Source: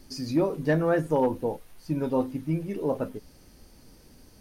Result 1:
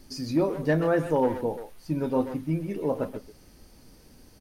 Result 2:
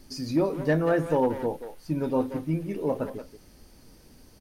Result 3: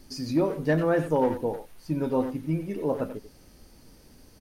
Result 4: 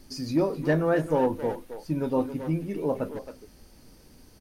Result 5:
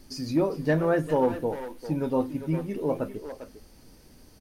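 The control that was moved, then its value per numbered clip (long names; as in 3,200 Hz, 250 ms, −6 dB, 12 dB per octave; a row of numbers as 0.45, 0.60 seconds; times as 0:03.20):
far-end echo of a speakerphone, delay time: 130, 180, 90, 270, 400 milliseconds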